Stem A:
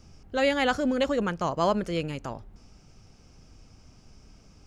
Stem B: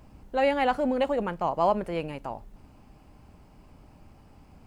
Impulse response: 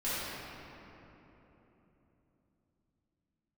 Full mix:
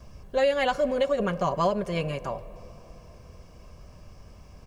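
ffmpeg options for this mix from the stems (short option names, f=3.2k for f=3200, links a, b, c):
-filter_complex "[0:a]volume=-2.5dB[a];[1:a]aecho=1:1:1.8:0.77,acrossover=split=460|3000[b][c][d];[c]acompressor=threshold=-26dB:ratio=6[e];[b][e][d]amix=inputs=3:normalize=0,adelay=4.1,volume=0.5dB,asplit=2[f][g];[g]volume=-22.5dB[h];[2:a]atrim=start_sample=2205[i];[h][i]afir=irnorm=-1:irlink=0[j];[a][f][j]amix=inputs=3:normalize=0,alimiter=limit=-14.5dB:level=0:latency=1:release=306"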